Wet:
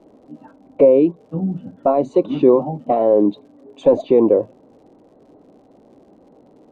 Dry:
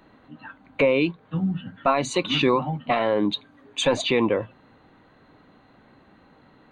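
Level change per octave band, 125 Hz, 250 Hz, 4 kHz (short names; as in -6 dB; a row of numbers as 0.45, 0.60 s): +1.0 dB, +7.0 dB, under -15 dB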